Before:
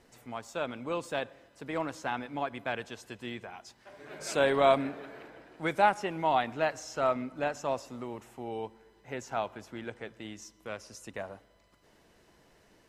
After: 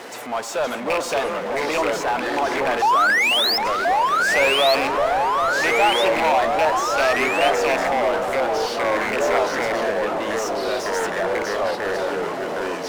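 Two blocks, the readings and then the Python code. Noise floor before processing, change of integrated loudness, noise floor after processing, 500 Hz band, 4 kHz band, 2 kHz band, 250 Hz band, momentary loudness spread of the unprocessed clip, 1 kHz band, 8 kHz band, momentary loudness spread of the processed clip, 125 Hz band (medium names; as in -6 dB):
-64 dBFS, +13.0 dB, -29 dBFS, +12.5 dB, +20.0 dB, +17.0 dB, +9.0 dB, 18 LU, +13.5 dB, +15.5 dB, 8 LU, +4.0 dB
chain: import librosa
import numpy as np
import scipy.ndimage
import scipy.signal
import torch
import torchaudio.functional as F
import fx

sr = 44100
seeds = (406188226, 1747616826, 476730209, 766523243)

p1 = fx.rattle_buzz(x, sr, strikes_db=-38.0, level_db=-19.0)
p2 = fx.spec_paint(p1, sr, seeds[0], shape='rise', start_s=2.82, length_s=0.76, low_hz=780.0, high_hz=5400.0, level_db=-23.0)
p3 = p2 + fx.echo_bbd(p2, sr, ms=378, stages=4096, feedback_pct=75, wet_db=-15.0, dry=0)
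p4 = fx.power_curve(p3, sr, exponent=0.5)
p5 = fx.echo_pitch(p4, sr, ms=494, semitones=-3, count=3, db_per_echo=-3.0)
p6 = scipy.signal.sosfilt(scipy.signal.butter(2, 550.0, 'highpass', fs=sr, output='sos'), p5)
p7 = np.clip(10.0 ** (27.5 / 20.0) * p6, -1.0, 1.0) / 10.0 ** (27.5 / 20.0)
p8 = p6 + (p7 * 10.0 ** (-3.0 / 20.0))
y = fx.tilt_eq(p8, sr, slope=-2.0)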